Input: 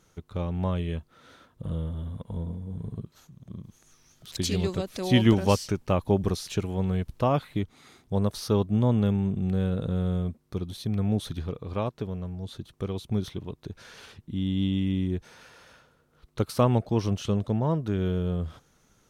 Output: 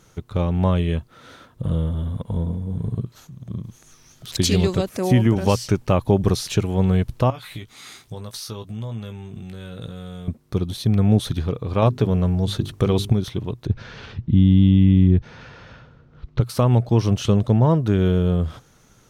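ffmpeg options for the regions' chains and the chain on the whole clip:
ffmpeg -i in.wav -filter_complex "[0:a]asettb=1/sr,asplit=3[link_01][link_02][link_03];[link_01]atrim=end=4.894[link_04];[link_02]atrim=start=4.89:end=5.36,asetpts=PTS-STARTPTS,afade=type=in:duration=0.004:curve=qsin,afade=type=out:start_time=0.466:duration=0.004:curve=qsin,highpass=76,equalizer=frequency=3800:width=1.6:gain=-13.5[link_05];[link_03]atrim=start=5.356[link_06];[link_04][link_05]acrossfade=duration=0.004:curve1=hsin:curve2=qsin[link_07];[link_07][link_06]acrossfade=duration=0.004:curve1=qsin:curve2=hsin,asettb=1/sr,asplit=3[link_08][link_09][link_10];[link_08]atrim=end=7.304[link_11];[link_09]atrim=start=7.3:end=10.28,asetpts=PTS-STARTPTS,afade=type=in:duration=0.004:curve=qsin,afade=type=out:start_time=2.976:duration=0.004:curve=qsin,tiltshelf=frequency=1200:gain=-7,acompressor=threshold=-40dB:ratio=6:attack=3.2:release=140:knee=1:detection=peak,asplit=2[link_12][link_13];[link_13]adelay=18,volume=-7dB[link_14];[link_12][link_14]amix=inputs=2:normalize=0,atrim=end_sample=131418[link_15];[link_10]atrim=start=10.276[link_16];[link_11][link_15]acrossfade=duration=0.004:curve1=hsin:curve2=qsin[link_17];[link_17][link_16]acrossfade=duration=0.004:curve1=qsin:curve2=hsin,asettb=1/sr,asplit=3[link_18][link_19][link_20];[link_18]atrim=end=11.824[link_21];[link_19]atrim=start=11.82:end=13.13,asetpts=PTS-STARTPTS,afade=type=in:duration=0.004:curve=qsin,afade=type=out:start_time=1.306:duration=0.004:curve=qsin,bandreject=frequency=50:width_type=h:width=6,bandreject=frequency=100:width_type=h:width=6,bandreject=frequency=150:width_type=h:width=6,bandreject=frequency=200:width_type=h:width=6,bandreject=frequency=250:width_type=h:width=6,bandreject=frequency=300:width_type=h:width=6,bandreject=frequency=350:width_type=h:width=6,bandreject=frequency=400:width_type=h:width=6,acontrast=80[link_22];[link_20]atrim=start=13.126[link_23];[link_21][link_22]acrossfade=duration=0.004:curve1=hsin:curve2=qsin[link_24];[link_24][link_23]acrossfade=duration=0.004:curve1=qsin:curve2=hsin,asettb=1/sr,asplit=3[link_25][link_26][link_27];[link_25]atrim=end=13.674[link_28];[link_26]atrim=start=13.67:end=16.41,asetpts=PTS-STARTPTS,afade=type=in:duration=0.004:curve=qsin,afade=type=out:start_time=2.736:duration=0.004:curve=qsin,lowpass=frequency=5900:width=0.5412,lowpass=frequency=5900:width=1.3066,bass=frequency=250:gain=10,treble=frequency=4000:gain=-7[link_29];[link_27]atrim=start=16.406[link_30];[link_28][link_29]acrossfade=duration=0.004:curve1=hsin:curve2=qsin[link_31];[link_31][link_30]acrossfade=duration=0.004:curve1=qsin:curve2=hsin,equalizer=frequency=120:width=6.3:gain=6.5,alimiter=limit=-15dB:level=0:latency=1:release=262,volume=8.5dB" out.wav

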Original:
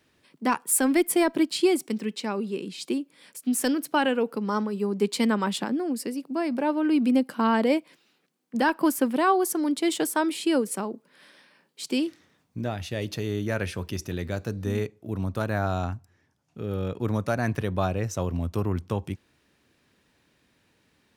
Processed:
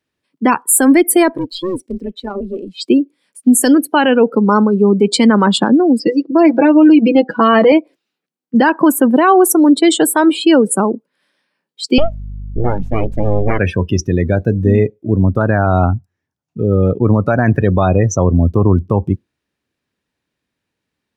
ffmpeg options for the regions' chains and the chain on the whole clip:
ffmpeg -i in.wav -filter_complex "[0:a]asettb=1/sr,asplit=3[link_01][link_02][link_03];[link_01]atrim=end=1.334[link_04];[link_02]atrim=start=1.33:end=2.77,asetpts=PTS-STARTPTS,afade=type=in:duration=0.004:curve=qsin,afade=type=out:start_time=1.436:duration=0.004:curve=qsin,bass=frequency=250:gain=-7,treble=frequency=4000:gain=1,aeval=exprs='(tanh(31.6*val(0)+0.2)-tanh(0.2))/31.6':channel_layout=same,tremolo=f=180:d=0.788[link_05];[link_03]atrim=start=2.766[link_06];[link_04][link_05]acrossfade=duration=0.004:curve1=hsin:curve2=qsin[link_07];[link_07][link_06]acrossfade=duration=0.004:curve1=qsin:curve2=hsin,asettb=1/sr,asplit=3[link_08][link_09][link_10];[link_08]atrim=end=5.994[link_11];[link_09]atrim=start=5.99:end=7.72,asetpts=PTS-STARTPTS,afade=type=in:duration=0.004:curve=qsin,afade=type=out:start_time=1.726:duration=0.004:curve=qsin,lowpass=frequency=6000:width=0.5412,lowpass=frequency=6000:width=1.3066,aecho=1:1:6.1:0.83,atrim=end_sample=76293,bandreject=frequency=388.5:width_type=h:width=4,bandreject=frequency=777:width_type=h:width=4,bandreject=frequency=1165.5:width_type=h:width=4,bandreject=frequency=1554:width_type=h:width=4,bandreject=frequency=1942.5:width_type=h:width=4[link_12];[link_10]atrim=start=7.716[link_13];[link_11][link_12]acrossfade=duration=0.004:curve1=hsin:curve2=qsin[link_14];[link_14][link_13]acrossfade=duration=0.004:curve1=qsin:curve2=hsin,asettb=1/sr,asplit=3[link_15][link_16][link_17];[link_15]atrim=end=11.984[link_18];[link_16]atrim=start=11.98:end=13.59,asetpts=PTS-STARTPTS,afade=type=in:duration=0.004:curve=qsin,afade=type=out:start_time=1.606:duration=0.004:curve=qsin,highshelf=frequency=3800:gain=-8,aeval=exprs='abs(val(0))':channel_layout=same,aeval=exprs='val(0)+0.00891*(sin(2*PI*50*n/s)+sin(2*PI*2*50*n/s)/2+sin(2*PI*3*50*n/s)/3+sin(2*PI*4*50*n/s)/4+sin(2*PI*5*50*n/s)/5)':channel_layout=same[link_19];[link_17]atrim=start=13.586[link_20];[link_18][link_19]acrossfade=duration=0.004:curve1=hsin:curve2=qsin[link_21];[link_21][link_20]acrossfade=duration=0.004:curve1=qsin:curve2=hsin,afftdn=noise_reduction=28:noise_floor=-34,alimiter=level_in=18dB:limit=-1dB:release=50:level=0:latency=1,volume=-1dB" out.wav

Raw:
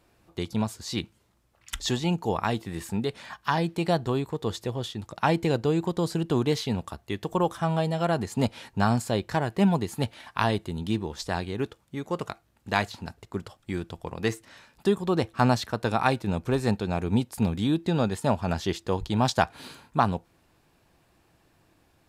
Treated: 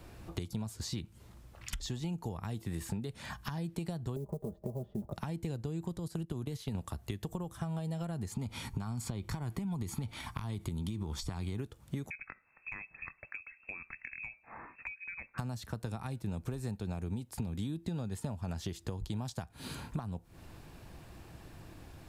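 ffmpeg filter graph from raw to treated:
ffmpeg -i in.wav -filter_complex "[0:a]asettb=1/sr,asplit=3[link_01][link_02][link_03];[link_01]atrim=end=4.164[link_04];[link_02]atrim=start=4.16:end=5.13,asetpts=PTS-STARTPTS,afade=type=in:duration=0.004:curve=qsin,afade=type=out:start_time=0.966:duration=0.004:curve=qsin,lowpass=frequency=620:width_type=q:width=5.6,aecho=1:1:5:0.84,atrim=end_sample=42777,acrusher=bits=8:mode=log:mix=0:aa=0.000001[link_05];[link_03]atrim=start=5.126[link_06];[link_04][link_05]acrossfade=duration=0.004:curve1=hsin:curve2=qsin[link_07];[link_07][link_06]acrossfade=duration=0.004:curve1=qsin:curve2=hsin,asettb=1/sr,asplit=3[link_08][link_09][link_10];[link_08]atrim=end=5.984[link_11];[link_09]atrim=start=5.98:end=6.75,asetpts=PTS-STARTPTS,afade=type=in:duration=0.004:curve=qsin,afade=type=out:start_time=0.766:duration=0.004:curve=qsin,agate=range=-16dB:threshold=-29dB:ratio=16:release=100:detection=peak,acompressor=threshold=-33dB:ratio=6:attack=3.2:release=140:knee=1:detection=peak,equalizer=frequency=11000:width=4.3:gain=6[link_12];[link_10]atrim=start=6.746[link_13];[link_11][link_12]acrossfade=duration=0.004:curve1=hsin:curve2=qsin[link_14];[link_14][link_13]acrossfade=duration=0.004:curve1=qsin:curve2=hsin,asettb=1/sr,asplit=3[link_15][link_16][link_17];[link_15]atrim=end=8.324[link_18];[link_16]atrim=start=8.32:end=11.57,asetpts=PTS-STARTPTS,afade=type=in:duration=0.004:curve=qsin,afade=type=out:start_time=3.246:duration=0.004:curve=qsin,acompressor=threshold=-29dB:ratio=10:attack=3.2:release=140:knee=1:detection=peak,aecho=1:1:0.9:0.46,atrim=end_sample=143325[link_19];[link_17]atrim=start=11.566[link_20];[link_18][link_19]acrossfade=duration=0.004:curve1=hsin:curve2=qsin[link_21];[link_21][link_20]acrossfade=duration=0.004:curve1=qsin:curve2=hsin,asettb=1/sr,asplit=3[link_22][link_23][link_24];[link_22]atrim=end=12.104[link_25];[link_23]atrim=start=12.1:end=15.38,asetpts=PTS-STARTPTS,afade=type=in:duration=0.004:curve=qsin,afade=type=out:start_time=3.276:duration=0.004:curve=qsin,acrossover=split=590[link_26][link_27];[link_26]aeval=exprs='val(0)*(1-0.7/2+0.7/2*cos(2*PI*1.4*n/s))':channel_layout=same[link_28];[link_27]aeval=exprs='val(0)*(1-0.7/2-0.7/2*cos(2*PI*1.4*n/s))':channel_layout=same[link_29];[link_28][link_29]amix=inputs=2:normalize=0,lowpass=frequency=2300:width_type=q:width=0.5098,lowpass=frequency=2300:width_type=q:width=0.6013,lowpass=frequency=2300:width_type=q:width=0.9,lowpass=frequency=2300:width_type=q:width=2.563,afreqshift=-2700[link_30];[link_24]atrim=start=15.376[link_31];[link_25][link_30]acrossfade=duration=0.004:curve1=hsin:curve2=qsin[link_32];[link_32][link_31]acrossfade=duration=0.004:curve1=qsin:curve2=hsin,acompressor=threshold=-37dB:ratio=6,lowshelf=frequency=170:gain=10,acrossover=split=220|7100[link_33][link_34][link_35];[link_33]acompressor=threshold=-46dB:ratio=4[link_36];[link_34]acompressor=threshold=-52dB:ratio=4[link_37];[link_35]acompressor=threshold=-58dB:ratio=4[link_38];[link_36][link_37][link_38]amix=inputs=3:normalize=0,volume=8dB" out.wav

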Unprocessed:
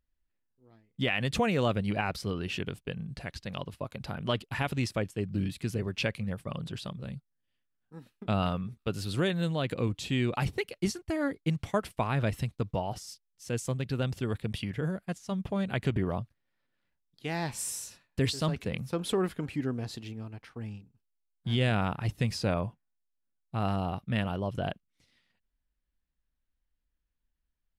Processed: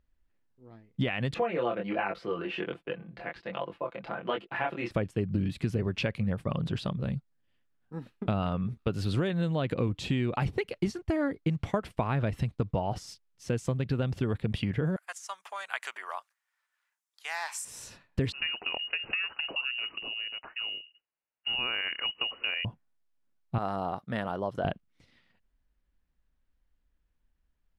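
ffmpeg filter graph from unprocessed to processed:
ffmpeg -i in.wav -filter_complex "[0:a]asettb=1/sr,asplit=3[link_01][link_02][link_03];[link_01]atrim=end=1.344[link_04];[link_02]atrim=start=1.34:end=4.91,asetpts=PTS-STARTPTS,afade=type=in:duration=0.004:curve=qsin,afade=type=out:start_time=3.566:duration=0.004:curve=qsin,acrossover=split=280 3200:gain=0.0891 1 0.126[link_05][link_06][link_07];[link_05][link_06][link_07]amix=inputs=3:normalize=0,flanger=delay=20:depth=5.6:speed=1.3,aecho=1:1:5.9:0.58,atrim=end_sample=157437[link_08];[link_03]atrim=start=4.906[link_09];[link_04][link_08]acrossfade=duration=0.004:curve1=hsin:curve2=qsin[link_10];[link_10][link_09]acrossfade=duration=0.004:curve1=qsin:curve2=hsin,asettb=1/sr,asplit=3[link_11][link_12][link_13];[link_11]atrim=end=14.964[link_14];[link_12]atrim=start=14.96:end=17.65,asetpts=PTS-STARTPTS,afade=type=in:duration=0.004:curve=qsin,afade=type=out:start_time=2.686:duration=0.004:curve=qsin,highpass=frequency=970:width=0.5412,highpass=frequency=970:width=1.3066,highshelf=frequency=5300:width_type=q:width=1.5:gain=9[link_15];[link_13]atrim=start=17.646[link_16];[link_14][link_15]acrossfade=duration=0.004:curve1=hsin:curve2=qsin[link_17];[link_17][link_16]acrossfade=duration=0.004:curve1=qsin:curve2=hsin,asettb=1/sr,asplit=3[link_18][link_19][link_20];[link_18]atrim=end=18.324[link_21];[link_19]atrim=start=18.32:end=22.65,asetpts=PTS-STARTPTS,afade=type=in:duration=0.004:curve=qsin,afade=type=out:start_time=4.326:duration=0.004:curve=qsin,highpass=45,lowpass=frequency=2600:width_type=q:width=0.5098,lowpass=frequency=2600:width_type=q:width=0.6013,lowpass=frequency=2600:width_type=q:width=0.9,lowpass=frequency=2600:width_type=q:width=2.563,afreqshift=-3000[link_22];[link_20]atrim=start=22.646[link_23];[link_21][link_22]acrossfade=duration=0.004:curve1=hsin:curve2=qsin[link_24];[link_24][link_23]acrossfade=duration=0.004:curve1=qsin:curve2=hsin,asettb=1/sr,asplit=3[link_25][link_26][link_27];[link_25]atrim=end=23.584[link_28];[link_26]atrim=start=23.58:end=24.65,asetpts=PTS-STARTPTS,afade=type=in:duration=0.004:curve=qsin,afade=type=out:start_time=1.066:duration=0.004:curve=qsin,highpass=frequency=670:poles=1,equalizer=frequency=2600:width_type=o:width=0.65:gain=-11.5[link_29];[link_27]atrim=start=24.646[link_30];[link_28][link_29]acrossfade=duration=0.004:curve1=hsin:curve2=qsin[link_31];[link_31][link_30]acrossfade=duration=0.004:curve1=qsin:curve2=hsin,acompressor=threshold=-33dB:ratio=6,lowpass=frequency=2100:poles=1,volume=8dB" out.wav

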